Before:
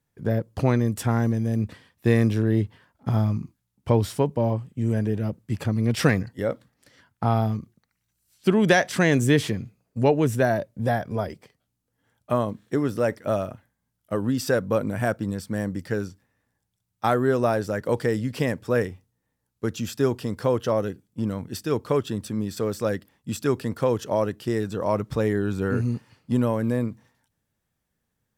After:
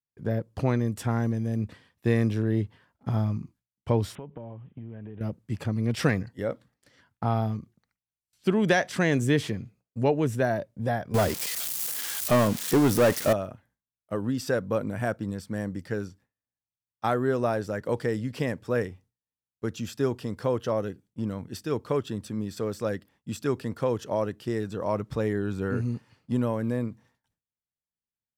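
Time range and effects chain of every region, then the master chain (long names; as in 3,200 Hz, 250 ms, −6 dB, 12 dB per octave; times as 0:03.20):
0:04.15–0:05.21: high-shelf EQ 8,300 Hz −10 dB + downward compressor 8 to 1, threshold −32 dBFS + bad sample-rate conversion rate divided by 6×, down none, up filtered
0:11.14–0:13.33: spike at every zero crossing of −25 dBFS + leveller curve on the samples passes 3
whole clip: noise gate with hold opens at −53 dBFS; high-shelf EQ 9,100 Hz −5.5 dB; level −4 dB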